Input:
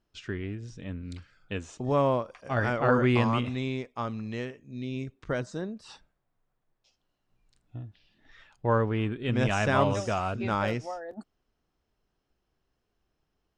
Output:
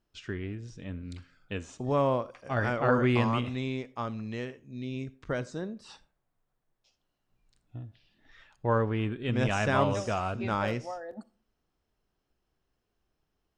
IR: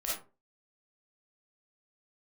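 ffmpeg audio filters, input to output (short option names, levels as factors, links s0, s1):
-filter_complex "[0:a]asplit=2[s0][s1];[1:a]atrim=start_sample=2205,asetrate=37485,aresample=44100[s2];[s1][s2]afir=irnorm=-1:irlink=0,volume=0.0708[s3];[s0][s3]amix=inputs=2:normalize=0,volume=0.794"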